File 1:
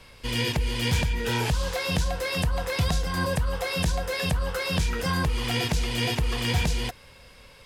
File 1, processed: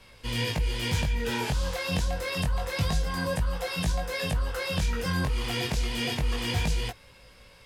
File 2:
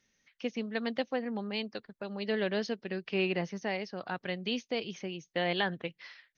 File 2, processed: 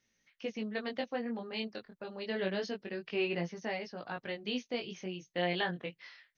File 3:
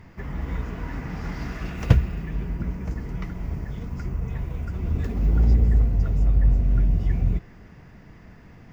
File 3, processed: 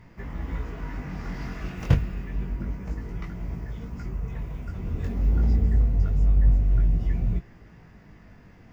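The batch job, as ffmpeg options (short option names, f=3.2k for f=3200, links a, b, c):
-af "flanger=delay=17.5:depth=5:speed=0.27"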